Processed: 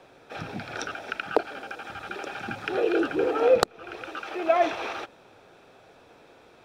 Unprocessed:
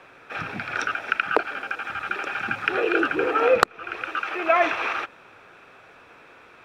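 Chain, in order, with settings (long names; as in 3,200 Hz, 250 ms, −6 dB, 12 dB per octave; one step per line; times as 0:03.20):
flat-topped bell 1,700 Hz −9.5 dB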